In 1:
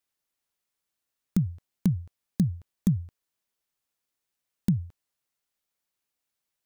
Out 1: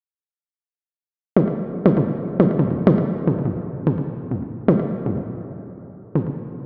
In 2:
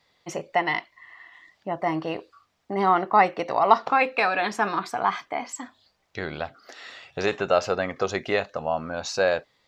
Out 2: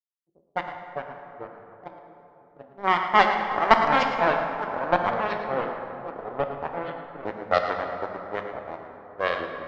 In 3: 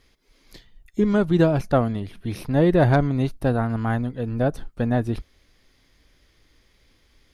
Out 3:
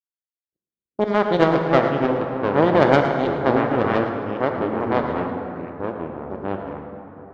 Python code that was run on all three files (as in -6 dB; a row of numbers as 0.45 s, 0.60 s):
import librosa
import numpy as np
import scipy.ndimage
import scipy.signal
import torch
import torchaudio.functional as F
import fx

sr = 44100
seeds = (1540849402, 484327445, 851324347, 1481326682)

y = np.where(x < 0.0, 10.0 ** (-7.0 / 20.0) * x, x)
y = fx.power_curve(y, sr, exponent=2.0)
y = fx.env_lowpass(y, sr, base_hz=380.0, full_db=-25.0)
y = scipy.signal.sosfilt(scipy.signal.butter(2, 68.0, 'highpass', fs=sr, output='sos'), y)
y = fx.env_lowpass(y, sr, base_hz=500.0, full_db=-27.5)
y = fx.bass_treble(y, sr, bass_db=-11, treble_db=6)
y = fx.leveller(y, sr, passes=2)
y = fx.air_absorb(y, sr, metres=170.0)
y = fx.notch(y, sr, hz=2600.0, q=12.0)
y = fx.echo_pitch(y, sr, ms=253, semitones=-4, count=2, db_per_echo=-6.0)
y = y + 10.0 ** (-12.5 / 20.0) * np.pad(y, (int(111 * sr / 1000.0), 0))[:len(y)]
y = fx.rev_plate(y, sr, seeds[0], rt60_s=3.5, hf_ratio=0.45, predelay_ms=0, drr_db=4.0)
y = librosa.util.normalize(y) * 10.0 ** (-2 / 20.0)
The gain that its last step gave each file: +19.5 dB, +3.5 dB, +5.0 dB